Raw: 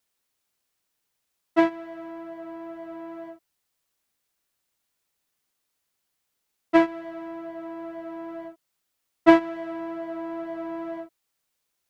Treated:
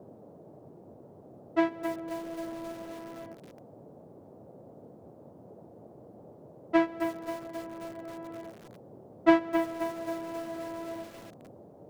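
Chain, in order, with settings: 1.81–2.73 s: bass shelf 380 Hz +10 dB; band noise 97–640 Hz -45 dBFS; bit-crushed delay 266 ms, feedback 55%, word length 6-bit, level -7.5 dB; trim -6 dB

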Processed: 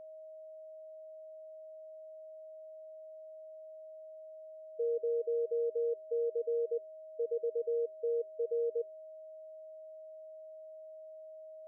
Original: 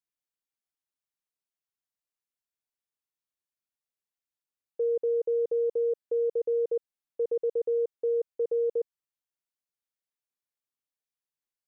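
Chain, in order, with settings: spectral contrast enhancement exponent 1.6; hum notches 50/100/150/200/250/300/350/400 Hz; whistle 630 Hz -41 dBFS; trim -6 dB

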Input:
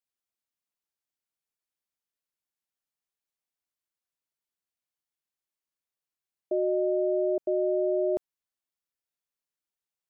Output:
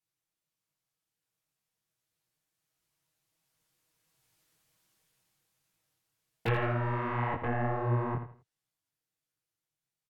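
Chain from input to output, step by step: cycle switcher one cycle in 3, inverted; Doppler pass-by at 4.60 s, 7 m/s, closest 4.5 m; low-pass that closes with the level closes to 440 Hz, closed at -38.5 dBFS; peaking EQ 110 Hz +12.5 dB 1.5 oct; comb 6.3 ms, depth 64%; in parallel at -6.5 dB: sine folder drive 16 dB, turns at -25.5 dBFS; on the sum: feedback delay 82 ms, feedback 29%, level -10 dB; detune thickener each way 48 cents; trim +6 dB

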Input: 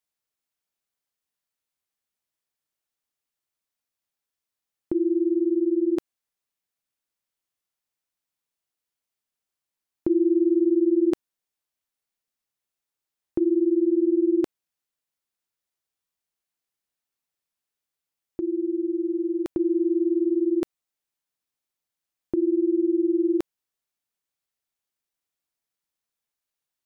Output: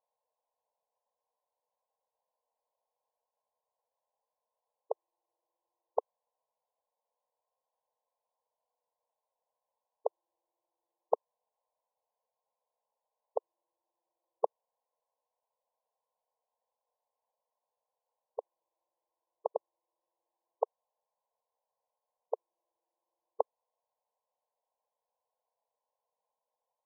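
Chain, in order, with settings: brick-wall FIR band-pass 440–1100 Hz; trim +12.5 dB

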